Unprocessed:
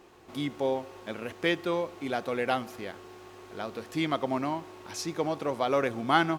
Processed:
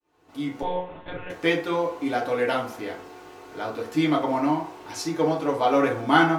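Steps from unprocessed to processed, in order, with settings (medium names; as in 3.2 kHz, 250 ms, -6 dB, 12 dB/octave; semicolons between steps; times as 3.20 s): fade-in on the opening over 0.74 s; 0.62–1.30 s: monotone LPC vocoder at 8 kHz 180 Hz; FDN reverb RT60 0.5 s, low-frequency decay 0.7×, high-frequency decay 0.5×, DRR -3.5 dB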